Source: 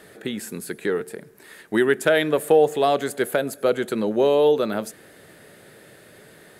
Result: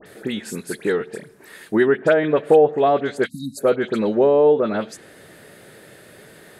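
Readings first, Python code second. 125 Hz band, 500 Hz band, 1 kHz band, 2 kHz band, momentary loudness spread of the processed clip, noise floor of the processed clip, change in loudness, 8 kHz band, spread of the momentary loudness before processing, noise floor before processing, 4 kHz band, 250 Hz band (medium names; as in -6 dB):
+3.0 dB, +3.0 dB, +2.5 dB, 0.0 dB, 14 LU, -47 dBFS, +2.5 dB, no reading, 14 LU, -50 dBFS, -4.0 dB, +3.0 dB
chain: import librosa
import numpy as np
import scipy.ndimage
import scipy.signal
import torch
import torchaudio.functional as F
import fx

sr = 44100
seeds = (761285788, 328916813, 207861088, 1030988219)

y = fx.spec_erase(x, sr, start_s=3.26, length_s=0.31, low_hz=300.0, high_hz=3700.0)
y = fx.env_lowpass_down(y, sr, base_hz=1300.0, full_db=-14.0)
y = fx.dispersion(y, sr, late='highs', ms=62.0, hz=2400.0)
y = y * librosa.db_to_amplitude(3.0)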